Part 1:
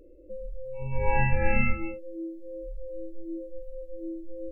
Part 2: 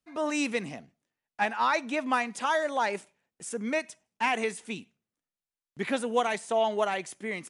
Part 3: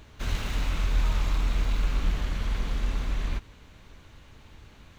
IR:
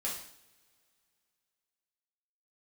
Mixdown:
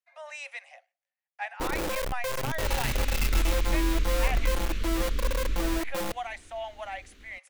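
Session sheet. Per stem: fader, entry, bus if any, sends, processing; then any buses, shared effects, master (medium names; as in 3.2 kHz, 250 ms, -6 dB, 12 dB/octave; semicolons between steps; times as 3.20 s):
-2.5 dB, 1.60 s, no send, one-bit comparator; treble shelf 8.9 kHz +6 dB
-4.0 dB, 0.00 s, no send, rippled Chebyshev high-pass 530 Hz, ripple 9 dB
0.0 dB, 2.40 s, no send, static phaser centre 330 Hz, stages 4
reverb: none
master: none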